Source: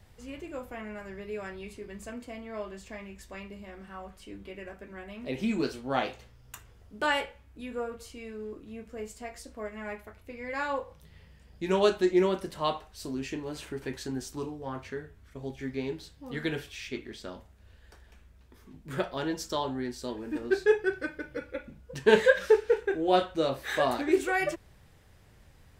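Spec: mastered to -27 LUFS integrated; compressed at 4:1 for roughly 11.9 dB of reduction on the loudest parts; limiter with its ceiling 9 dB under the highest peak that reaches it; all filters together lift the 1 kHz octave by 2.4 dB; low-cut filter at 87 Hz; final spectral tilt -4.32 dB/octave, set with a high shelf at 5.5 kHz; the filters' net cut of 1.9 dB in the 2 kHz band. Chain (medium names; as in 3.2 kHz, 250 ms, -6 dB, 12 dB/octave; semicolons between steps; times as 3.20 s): high-pass 87 Hz; peaking EQ 1 kHz +4 dB; peaking EQ 2 kHz -5 dB; treble shelf 5.5 kHz +6.5 dB; compression 4:1, threshold -30 dBFS; trim +12.5 dB; peak limiter -15 dBFS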